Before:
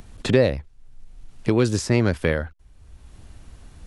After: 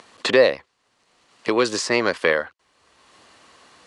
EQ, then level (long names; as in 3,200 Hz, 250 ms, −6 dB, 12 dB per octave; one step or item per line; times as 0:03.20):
loudspeaker in its box 410–9,100 Hz, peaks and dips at 510 Hz +3 dB, 1,100 Hz +9 dB, 1,900 Hz +5 dB, 2,900 Hz +4 dB, 4,400 Hz +6 dB
+3.0 dB